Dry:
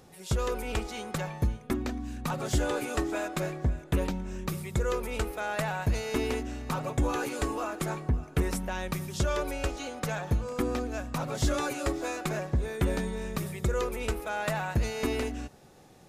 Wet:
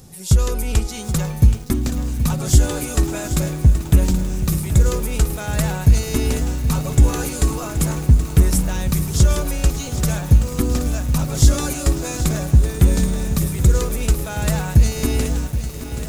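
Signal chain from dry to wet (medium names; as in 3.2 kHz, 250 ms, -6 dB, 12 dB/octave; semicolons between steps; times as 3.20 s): tone controls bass +14 dB, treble +14 dB; bit-crushed delay 776 ms, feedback 80%, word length 6-bit, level -11 dB; trim +2 dB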